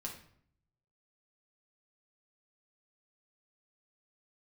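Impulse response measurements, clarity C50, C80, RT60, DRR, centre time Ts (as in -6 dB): 7.0 dB, 11.0 dB, 0.60 s, -1.5 dB, 22 ms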